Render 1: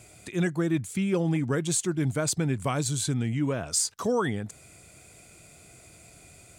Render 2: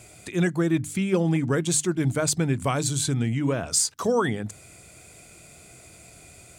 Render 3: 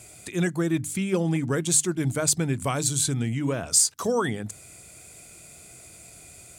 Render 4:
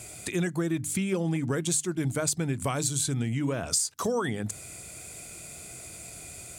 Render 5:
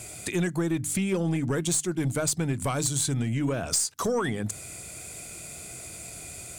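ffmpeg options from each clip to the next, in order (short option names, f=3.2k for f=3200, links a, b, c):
-af "bandreject=f=50:t=h:w=6,bandreject=f=100:t=h:w=6,bandreject=f=150:t=h:w=6,bandreject=f=200:t=h:w=6,bandreject=f=250:t=h:w=6,bandreject=f=300:t=h:w=6,volume=3.5dB"
-af "equalizer=f=12k:w=0.42:g=7,volume=-2dB"
-af "acompressor=threshold=-30dB:ratio=4,volume=4dB"
-af "aeval=exprs='0.251*(cos(1*acos(clip(val(0)/0.251,-1,1)))-cos(1*PI/2))+0.0251*(cos(4*acos(clip(val(0)/0.251,-1,1)))-cos(4*PI/2))+0.0282*(cos(5*acos(clip(val(0)/0.251,-1,1)))-cos(5*PI/2))+0.0141*(cos(6*acos(clip(val(0)/0.251,-1,1)))-cos(6*PI/2))+0.00562*(cos(8*acos(clip(val(0)/0.251,-1,1)))-cos(8*PI/2))':c=same,volume=-1.5dB"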